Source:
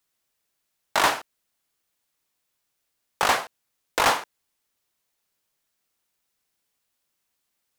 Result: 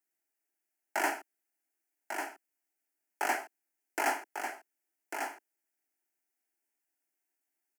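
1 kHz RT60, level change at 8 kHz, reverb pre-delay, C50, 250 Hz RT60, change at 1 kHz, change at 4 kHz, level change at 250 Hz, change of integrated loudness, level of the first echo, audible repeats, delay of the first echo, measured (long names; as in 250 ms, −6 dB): no reverb audible, −9.5 dB, no reverb audible, no reverb audible, no reverb audible, −9.0 dB, −17.5 dB, −5.0 dB, −12.0 dB, −6.5 dB, 1, 1,146 ms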